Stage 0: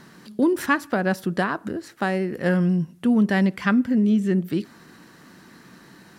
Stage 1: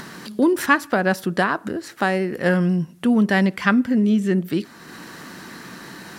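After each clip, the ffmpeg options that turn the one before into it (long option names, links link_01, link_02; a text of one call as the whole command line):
ffmpeg -i in.wav -filter_complex "[0:a]lowshelf=frequency=330:gain=-5.5,asplit=2[link_01][link_02];[link_02]acompressor=mode=upward:threshold=-29dB:ratio=2.5,volume=2dB[link_03];[link_01][link_03]amix=inputs=2:normalize=0,volume=-2dB" out.wav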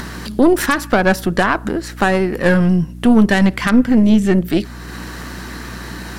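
ffmpeg -i in.wav -af "aeval=exprs='val(0)+0.0126*(sin(2*PI*60*n/s)+sin(2*PI*2*60*n/s)/2+sin(2*PI*3*60*n/s)/3+sin(2*PI*4*60*n/s)/4+sin(2*PI*5*60*n/s)/5)':channel_layout=same,aeval=exprs='0.841*(cos(1*acos(clip(val(0)/0.841,-1,1)))-cos(1*PI/2))+0.237*(cos(4*acos(clip(val(0)/0.841,-1,1)))-cos(4*PI/2))+0.266*(cos(6*acos(clip(val(0)/0.841,-1,1)))-cos(6*PI/2))+0.0422*(cos(8*acos(clip(val(0)/0.841,-1,1)))-cos(8*PI/2))':channel_layout=same,alimiter=level_in=7.5dB:limit=-1dB:release=50:level=0:latency=1,volume=-1dB" out.wav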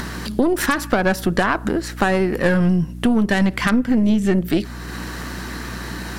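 ffmpeg -i in.wav -af "acompressor=threshold=-13dB:ratio=6" out.wav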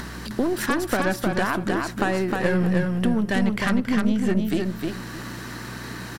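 ffmpeg -i in.wav -af "aecho=1:1:309|618|927:0.668|0.154|0.0354,volume=-6dB" out.wav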